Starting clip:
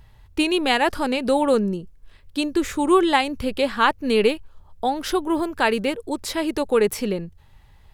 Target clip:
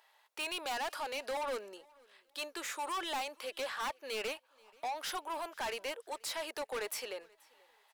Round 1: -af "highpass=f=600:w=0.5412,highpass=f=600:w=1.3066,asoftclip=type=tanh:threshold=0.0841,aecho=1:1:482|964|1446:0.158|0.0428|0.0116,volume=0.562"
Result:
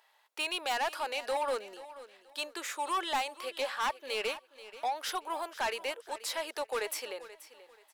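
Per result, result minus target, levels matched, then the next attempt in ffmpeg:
echo-to-direct +10.5 dB; saturation: distortion -4 dB
-af "highpass=f=600:w=0.5412,highpass=f=600:w=1.3066,asoftclip=type=tanh:threshold=0.0841,aecho=1:1:482|964:0.0473|0.0128,volume=0.562"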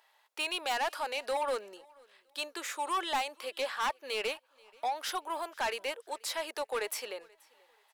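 saturation: distortion -4 dB
-af "highpass=f=600:w=0.5412,highpass=f=600:w=1.3066,asoftclip=type=tanh:threshold=0.0355,aecho=1:1:482|964:0.0473|0.0128,volume=0.562"

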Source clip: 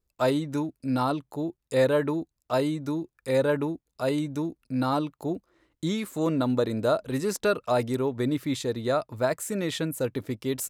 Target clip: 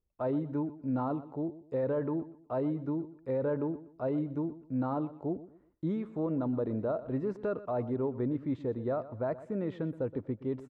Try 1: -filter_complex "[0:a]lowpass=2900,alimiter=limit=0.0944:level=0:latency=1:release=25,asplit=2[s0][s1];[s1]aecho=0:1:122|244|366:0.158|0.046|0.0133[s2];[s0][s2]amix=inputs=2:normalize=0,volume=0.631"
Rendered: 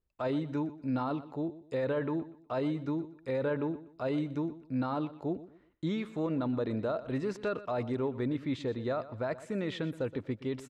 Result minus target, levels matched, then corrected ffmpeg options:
4 kHz band +17.0 dB
-filter_complex "[0:a]lowpass=980,alimiter=limit=0.0944:level=0:latency=1:release=25,asplit=2[s0][s1];[s1]aecho=0:1:122|244|366:0.158|0.046|0.0133[s2];[s0][s2]amix=inputs=2:normalize=0,volume=0.631"

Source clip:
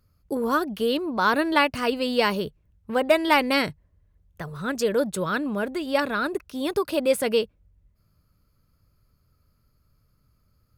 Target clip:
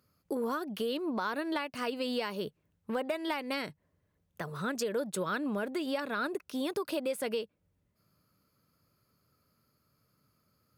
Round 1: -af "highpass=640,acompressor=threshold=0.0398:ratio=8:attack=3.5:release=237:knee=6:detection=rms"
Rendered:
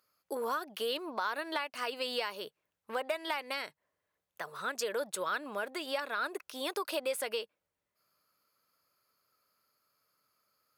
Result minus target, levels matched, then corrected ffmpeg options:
250 Hz band -9.5 dB
-af "highpass=180,acompressor=threshold=0.0398:ratio=8:attack=3.5:release=237:knee=6:detection=rms"

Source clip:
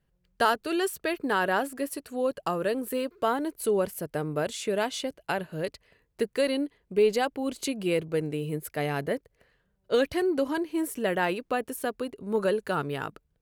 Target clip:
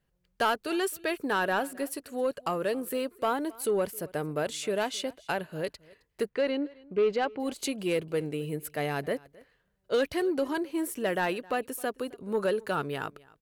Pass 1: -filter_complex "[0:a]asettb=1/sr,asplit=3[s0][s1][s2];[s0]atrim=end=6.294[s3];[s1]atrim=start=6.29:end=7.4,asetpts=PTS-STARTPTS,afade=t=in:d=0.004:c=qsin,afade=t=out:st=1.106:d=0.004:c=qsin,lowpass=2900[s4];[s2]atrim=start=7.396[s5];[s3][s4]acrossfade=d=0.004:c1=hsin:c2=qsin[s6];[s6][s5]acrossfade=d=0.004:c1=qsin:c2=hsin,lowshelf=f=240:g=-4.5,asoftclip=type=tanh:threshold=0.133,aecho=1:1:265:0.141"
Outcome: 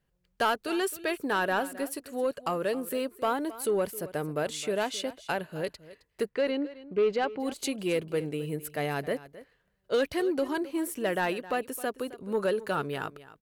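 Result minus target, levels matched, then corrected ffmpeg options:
echo-to-direct +6.5 dB
-filter_complex "[0:a]asettb=1/sr,asplit=3[s0][s1][s2];[s0]atrim=end=6.294[s3];[s1]atrim=start=6.29:end=7.4,asetpts=PTS-STARTPTS,afade=t=in:d=0.004:c=qsin,afade=t=out:st=1.106:d=0.004:c=qsin,lowpass=2900[s4];[s2]atrim=start=7.396[s5];[s3][s4]acrossfade=d=0.004:c1=hsin:c2=qsin[s6];[s6][s5]acrossfade=d=0.004:c1=qsin:c2=hsin,lowshelf=f=240:g=-4.5,asoftclip=type=tanh:threshold=0.133,aecho=1:1:265:0.0668"

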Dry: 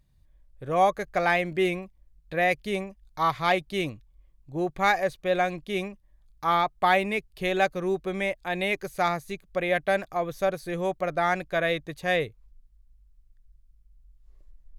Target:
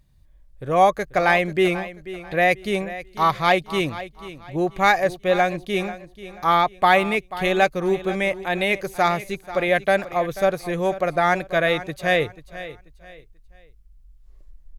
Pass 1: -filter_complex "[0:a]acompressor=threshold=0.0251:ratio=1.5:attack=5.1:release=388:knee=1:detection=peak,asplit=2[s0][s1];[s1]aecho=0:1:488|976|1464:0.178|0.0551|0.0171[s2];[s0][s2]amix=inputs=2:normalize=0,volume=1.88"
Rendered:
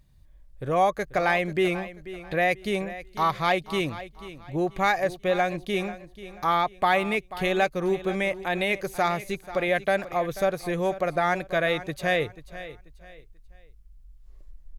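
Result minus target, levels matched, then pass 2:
compression: peak gain reduction +6.5 dB
-filter_complex "[0:a]asplit=2[s0][s1];[s1]aecho=0:1:488|976|1464:0.178|0.0551|0.0171[s2];[s0][s2]amix=inputs=2:normalize=0,volume=1.88"

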